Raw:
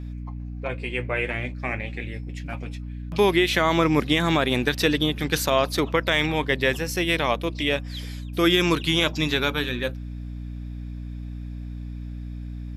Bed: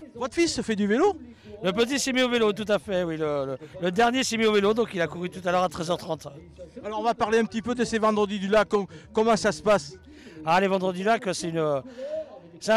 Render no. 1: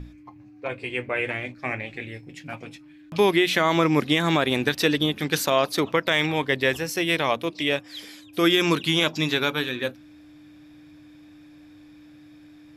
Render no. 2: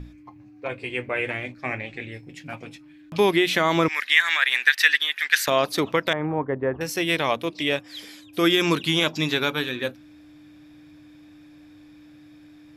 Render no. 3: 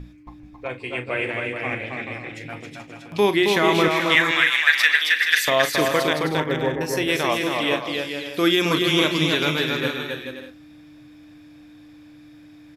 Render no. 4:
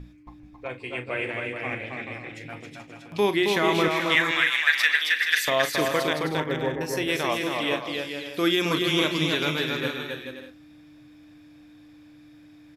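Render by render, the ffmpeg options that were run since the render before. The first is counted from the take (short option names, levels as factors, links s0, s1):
-af "bandreject=f=60:t=h:w=6,bandreject=f=120:t=h:w=6,bandreject=f=180:t=h:w=6,bandreject=f=240:t=h:w=6"
-filter_complex "[0:a]asettb=1/sr,asplit=3[s0][s1][s2];[s0]atrim=end=1.624[s3];[s1]atrim=start=1.62:end=2.12,asetpts=PTS-STARTPTS,afade=t=in:d=0.004:c=qsin,afade=t=out:st=0.496:d=0.004:c=qsin,lowpass=f=8700:w=0.5412,lowpass=f=8700:w=1.3066[s4];[s2]atrim=start=2.116[s5];[s3][s4]acrossfade=d=0.004:c1=hsin:c2=qsin[s6];[s6][s5]acrossfade=d=0.004:c1=qsin:c2=hsin,asettb=1/sr,asplit=3[s7][s8][s9];[s7]atrim=end=3.884[s10];[s8]atrim=start=3.88:end=5.48,asetpts=PTS-STARTPTS,afade=t=in:d=0.004:c=qsin,afade=t=out:st=1.596:d=0.004:c=qsin,highpass=f=1800:t=q:w=4.2[s11];[s9]atrim=start=5.476[s12];[s10][s11]acrossfade=d=0.004:c1=hsin:c2=qsin[s13];[s13][s12]acrossfade=d=0.004:c1=qsin:c2=hsin,asettb=1/sr,asplit=3[s14][s15][s16];[s14]atrim=end=6.134[s17];[s15]atrim=start=6.13:end=6.81,asetpts=PTS-STARTPTS,afade=t=in:d=0.004:c=qsin,afade=t=out:st=0.676:d=0.004:c=qsin,lowpass=f=1300:w=0.5412,lowpass=f=1300:w=1.3066[s18];[s16]atrim=start=6.806[s19];[s17][s18]acrossfade=d=0.004:c1=hsin:c2=qsin[s20];[s20][s19]acrossfade=d=0.004:c1=qsin:c2=hsin"
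-filter_complex "[0:a]asplit=2[s0][s1];[s1]adelay=39,volume=0.251[s2];[s0][s2]amix=inputs=2:normalize=0,aecho=1:1:270|432|529.2|587.5|622.5:0.631|0.398|0.251|0.158|0.1"
-af "volume=0.631"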